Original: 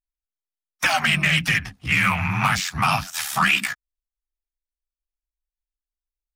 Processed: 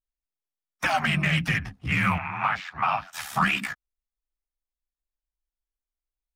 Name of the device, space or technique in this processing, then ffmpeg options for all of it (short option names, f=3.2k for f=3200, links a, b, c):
through cloth: -filter_complex "[0:a]highshelf=f=2k:g=-11.5,asettb=1/sr,asplit=3[a][b][c];[a]atrim=end=2.184[d];[b]atrim=start=2.18:end=3.13,asetpts=PTS-STARTPTS,afade=t=in:d=0.004:c=qsin,afade=t=out:st=0.946:d=0.004:c=qsin,acrossover=split=450 3600:gain=0.158 1 0.1[e][f][g];[e][f][g]amix=inputs=3:normalize=0[h];[c]atrim=start=3.126[i];[d][h]acrossfade=d=0.004:c1=hsin:c2=qsin[j];[j][i]acrossfade=d=0.004:c1=qsin:c2=hsin"